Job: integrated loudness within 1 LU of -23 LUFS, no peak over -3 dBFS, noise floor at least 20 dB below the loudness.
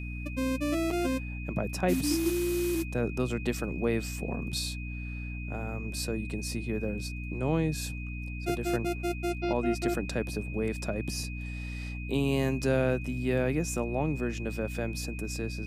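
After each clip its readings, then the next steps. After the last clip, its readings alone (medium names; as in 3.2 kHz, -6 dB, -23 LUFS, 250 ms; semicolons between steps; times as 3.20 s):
hum 60 Hz; highest harmonic 300 Hz; hum level -35 dBFS; steady tone 2.5 kHz; tone level -43 dBFS; loudness -31.5 LUFS; peak level -13.5 dBFS; loudness target -23.0 LUFS
-> de-hum 60 Hz, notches 5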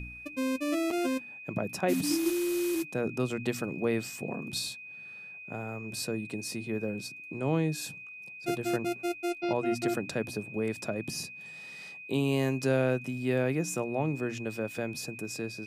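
hum not found; steady tone 2.5 kHz; tone level -43 dBFS
-> band-stop 2.5 kHz, Q 30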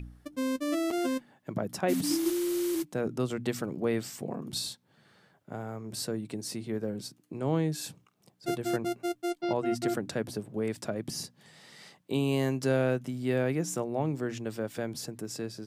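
steady tone not found; loudness -32.5 LUFS; peak level -14.0 dBFS; loudness target -23.0 LUFS
-> trim +9.5 dB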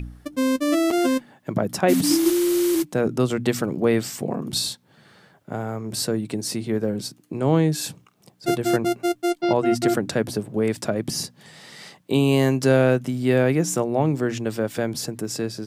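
loudness -23.0 LUFS; peak level -4.5 dBFS; noise floor -59 dBFS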